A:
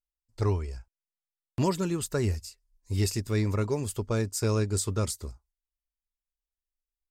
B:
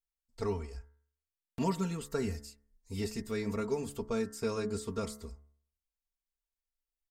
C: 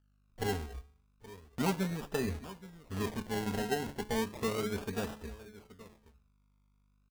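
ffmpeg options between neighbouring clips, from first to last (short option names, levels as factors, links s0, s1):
-filter_complex "[0:a]acrossover=split=2900[s0][s1];[s1]acompressor=threshold=0.01:ratio=4:attack=1:release=60[s2];[s0][s2]amix=inputs=2:normalize=0,aecho=1:1:4.4:0.81,bandreject=f=71.54:t=h:w=4,bandreject=f=143.08:t=h:w=4,bandreject=f=214.62:t=h:w=4,bandreject=f=286.16:t=h:w=4,bandreject=f=357.7:t=h:w=4,bandreject=f=429.24:t=h:w=4,bandreject=f=500.78:t=h:w=4,bandreject=f=572.32:t=h:w=4,bandreject=f=643.86:t=h:w=4,bandreject=f=715.4:t=h:w=4,bandreject=f=786.94:t=h:w=4,bandreject=f=858.48:t=h:w=4,bandreject=f=930.02:t=h:w=4,bandreject=f=1001.56:t=h:w=4,bandreject=f=1073.1:t=h:w=4,bandreject=f=1144.64:t=h:w=4,bandreject=f=1216.18:t=h:w=4,bandreject=f=1287.72:t=h:w=4,bandreject=f=1359.26:t=h:w=4,bandreject=f=1430.8:t=h:w=4,bandreject=f=1502.34:t=h:w=4,bandreject=f=1573.88:t=h:w=4,bandreject=f=1645.42:t=h:w=4,bandreject=f=1716.96:t=h:w=4,bandreject=f=1788.5:t=h:w=4,bandreject=f=1860.04:t=h:w=4,bandreject=f=1931.58:t=h:w=4,bandreject=f=2003.12:t=h:w=4,bandreject=f=2074.66:t=h:w=4,bandreject=f=2146.2:t=h:w=4,volume=0.501"
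-af "aeval=exprs='val(0)+0.000355*(sin(2*PI*50*n/s)+sin(2*PI*2*50*n/s)/2+sin(2*PI*3*50*n/s)/3+sin(2*PI*4*50*n/s)/4+sin(2*PI*5*50*n/s)/5)':c=same,aecho=1:1:825:0.141,acrusher=samples=29:mix=1:aa=0.000001:lfo=1:lforange=17.4:lforate=0.34"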